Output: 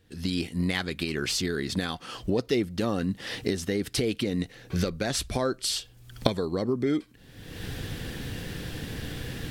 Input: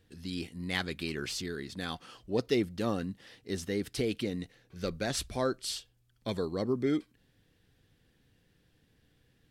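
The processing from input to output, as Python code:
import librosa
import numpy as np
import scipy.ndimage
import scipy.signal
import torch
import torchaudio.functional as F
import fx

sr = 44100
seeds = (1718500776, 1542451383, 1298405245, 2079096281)

y = fx.recorder_agc(x, sr, target_db=-21.0, rise_db_per_s=43.0, max_gain_db=30)
y = y * 10.0 ** (2.5 / 20.0)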